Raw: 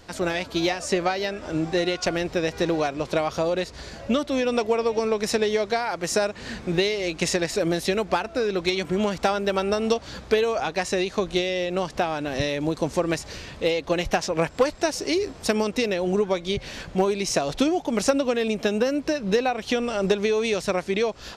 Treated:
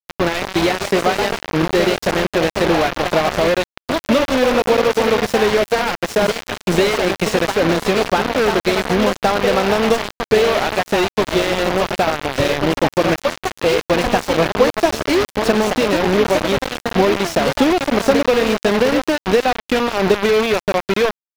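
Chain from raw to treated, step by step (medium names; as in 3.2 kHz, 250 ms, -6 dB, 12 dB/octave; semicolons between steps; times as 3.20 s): ever faster or slower copies 241 ms, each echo +2 st, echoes 3, each echo -6 dB; bit crusher 4-bit; slew-rate limiter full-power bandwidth 190 Hz; trim +6.5 dB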